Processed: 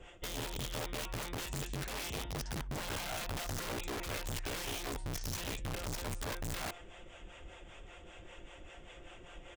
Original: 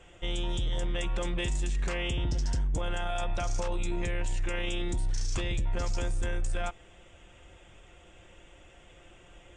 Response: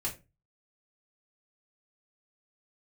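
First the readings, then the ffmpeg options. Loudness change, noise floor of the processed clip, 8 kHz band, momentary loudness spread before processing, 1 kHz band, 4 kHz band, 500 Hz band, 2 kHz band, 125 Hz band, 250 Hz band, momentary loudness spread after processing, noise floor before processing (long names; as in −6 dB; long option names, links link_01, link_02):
−6.5 dB, −54 dBFS, −0.5 dB, 3 LU, −4.0 dB, −3.0 dB, −6.5 dB, −4.0 dB, −8.5 dB, −6.0 dB, 15 LU, −56 dBFS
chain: -filter_complex "[0:a]highshelf=frequency=6400:gain=-7,asplit=2[link_01][link_02];[link_02]adelay=100,highpass=300,lowpass=3400,asoftclip=type=hard:threshold=-32.5dB,volume=-25dB[link_03];[link_01][link_03]amix=inputs=2:normalize=0,acrossover=split=470[link_04][link_05];[link_04]aeval=exprs='val(0)*(1-0.7/2+0.7/2*cos(2*PI*5.1*n/s))':channel_layout=same[link_06];[link_05]aeval=exprs='val(0)*(1-0.7/2-0.7/2*cos(2*PI*5.1*n/s))':channel_layout=same[link_07];[link_06][link_07]amix=inputs=2:normalize=0,areverse,acompressor=threshold=-43dB:ratio=5,areverse,equalizer=frequency=110:width_type=o:width=2.2:gain=-4.5,aeval=exprs='(mod(119*val(0)+1,2)-1)/119':channel_layout=same,volume=6.5dB"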